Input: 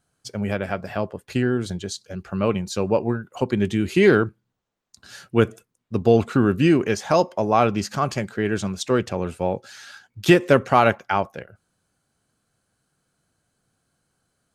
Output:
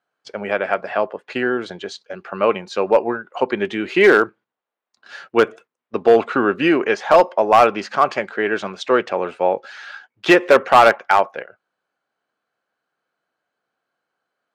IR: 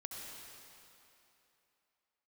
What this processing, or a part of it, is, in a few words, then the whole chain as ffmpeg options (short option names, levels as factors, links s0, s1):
walkie-talkie: -af "highpass=500,lowpass=2600,asoftclip=type=hard:threshold=0.224,agate=range=0.355:threshold=0.00316:ratio=16:detection=peak,volume=2.82"